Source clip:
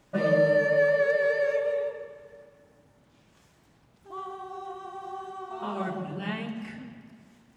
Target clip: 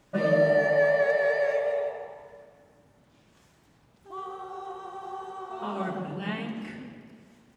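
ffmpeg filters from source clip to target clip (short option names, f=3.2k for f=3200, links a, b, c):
-filter_complex "[0:a]asplit=7[a][b][c][d][e][f][g];[b]adelay=85,afreqshift=70,volume=-14.5dB[h];[c]adelay=170,afreqshift=140,volume=-18.8dB[i];[d]adelay=255,afreqshift=210,volume=-23.1dB[j];[e]adelay=340,afreqshift=280,volume=-27.4dB[k];[f]adelay=425,afreqshift=350,volume=-31.7dB[l];[g]adelay=510,afreqshift=420,volume=-36dB[m];[a][h][i][j][k][l][m]amix=inputs=7:normalize=0"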